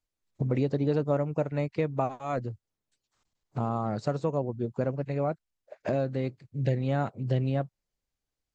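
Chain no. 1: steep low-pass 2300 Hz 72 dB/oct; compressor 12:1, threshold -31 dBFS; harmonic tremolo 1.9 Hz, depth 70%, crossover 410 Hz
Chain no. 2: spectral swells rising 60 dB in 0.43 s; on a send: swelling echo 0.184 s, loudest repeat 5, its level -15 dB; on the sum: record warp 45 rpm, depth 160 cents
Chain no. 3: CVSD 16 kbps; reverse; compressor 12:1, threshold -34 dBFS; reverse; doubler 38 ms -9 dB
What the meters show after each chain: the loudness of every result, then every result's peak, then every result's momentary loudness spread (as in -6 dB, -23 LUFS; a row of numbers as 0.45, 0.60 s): -41.0, -29.5, -39.5 LUFS; -23.0, -13.0, -23.0 dBFS; 7, 9, 6 LU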